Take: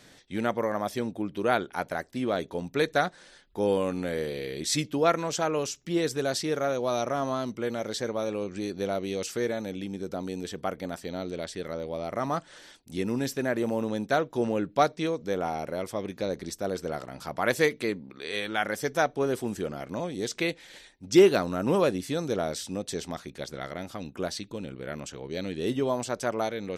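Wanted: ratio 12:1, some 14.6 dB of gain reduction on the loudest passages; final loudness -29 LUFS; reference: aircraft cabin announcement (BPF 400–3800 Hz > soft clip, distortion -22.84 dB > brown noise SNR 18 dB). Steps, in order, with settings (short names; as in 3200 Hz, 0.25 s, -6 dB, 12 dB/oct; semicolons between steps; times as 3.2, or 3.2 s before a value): compressor 12:1, threshold -27 dBFS; BPF 400–3800 Hz; soft clip -21.5 dBFS; brown noise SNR 18 dB; gain +8 dB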